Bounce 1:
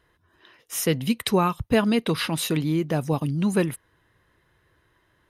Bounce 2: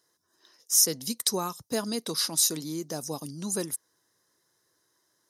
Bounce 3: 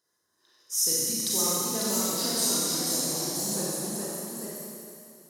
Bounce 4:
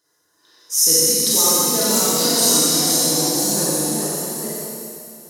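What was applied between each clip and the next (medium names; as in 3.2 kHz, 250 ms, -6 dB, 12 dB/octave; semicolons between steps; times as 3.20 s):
high-pass 220 Hz 12 dB/octave; resonant high shelf 3.9 kHz +13.5 dB, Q 3; trim -8.5 dB
Schroeder reverb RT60 2.9 s, combs from 31 ms, DRR -6.5 dB; ever faster or slower copies 617 ms, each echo +1 st, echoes 2; trim -8 dB
FDN reverb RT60 1.2 s, low-frequency decay 0.7×, high-frequency decay 0.9×, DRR -1 dB; trim +7.5 dB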